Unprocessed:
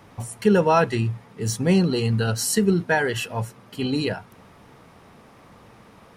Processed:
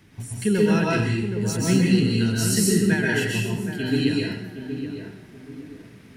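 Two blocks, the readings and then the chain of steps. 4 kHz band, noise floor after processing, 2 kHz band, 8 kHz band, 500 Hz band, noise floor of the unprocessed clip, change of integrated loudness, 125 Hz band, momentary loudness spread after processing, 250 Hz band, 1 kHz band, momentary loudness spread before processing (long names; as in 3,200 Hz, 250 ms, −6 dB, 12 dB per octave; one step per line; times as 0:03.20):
+2.0 dB, −48 dBFS, +1.0 dB, +2.0 dB, −2.5 dB, −51 dBFS, 0.0 dB, +1.5 dB, 19 LU, +3.0 dB, −8.5 dB, 11 LU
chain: flat-topped bell 780 Hz −13 dB
on a send: tape delay 770 ms, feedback 41%, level −6.5 dB, low-pass 1,100 Hz
on the sum: dense smooth reverb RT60 0.74 s, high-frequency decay 0.95×, pre-delay 115 ms, DRR −3.5 dB
level −2.5 dB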